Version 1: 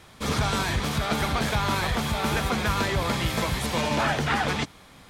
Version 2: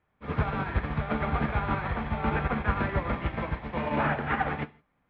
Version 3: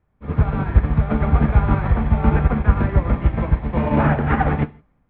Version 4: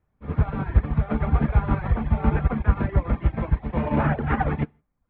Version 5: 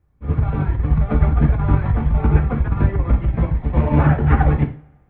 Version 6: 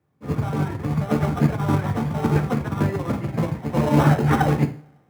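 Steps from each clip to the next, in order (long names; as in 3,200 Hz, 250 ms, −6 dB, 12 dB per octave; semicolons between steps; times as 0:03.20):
inverse Chebyshev low-pass filter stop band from 11,000 Hz, stop band 80 dB; reverb whose tail is shaped and stops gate 190 ms flat, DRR 4.5 dB; expander for the loud parts 2.5 to 1, over −36 dBFS
spectral tilt −3 dB per octave; automatic gain control gain up to 7.5 dB
reverb reduction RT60 0.5 s; level −4 dB
low-shelf EQ 220 Hz +8.5 dB; compressor whose output falls as the input rises −12 dBFS, ratio −0.5; coupled-rooms reverb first 0.38 s, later 1.7 s, from −27 dB, DRR 4 dB; level −1 dB
Bessel high-pass filter 170 Hz, order 8; in parallel at −9 dB: sample-rate reduction 2,300 Hz, jitter 0%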